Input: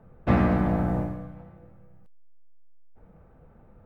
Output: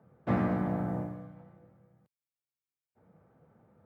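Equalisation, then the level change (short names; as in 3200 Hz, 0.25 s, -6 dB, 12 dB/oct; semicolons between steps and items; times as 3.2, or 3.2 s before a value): HPF 100 Hz 24 dB/oct; notch 2600 Hz, Q 15; dynamic EQ 3800 Hz, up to -4 dB, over -50 dBFS, Q 0.84; -6.5 dB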